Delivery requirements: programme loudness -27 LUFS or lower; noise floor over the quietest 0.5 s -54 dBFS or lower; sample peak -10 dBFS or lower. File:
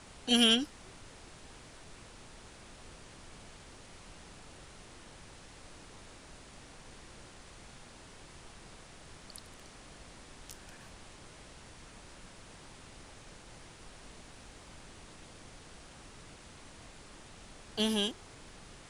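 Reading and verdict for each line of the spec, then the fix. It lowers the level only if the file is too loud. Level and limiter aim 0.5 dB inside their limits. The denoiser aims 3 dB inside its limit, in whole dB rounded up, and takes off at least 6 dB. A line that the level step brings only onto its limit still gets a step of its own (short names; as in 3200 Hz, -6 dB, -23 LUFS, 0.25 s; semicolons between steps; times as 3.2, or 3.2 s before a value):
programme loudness -29.5 LUFS: OK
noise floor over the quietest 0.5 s -53 dBFS: fail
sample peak -12.5 dBFS: OK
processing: denoiser 6 dB, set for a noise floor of -53 dBFS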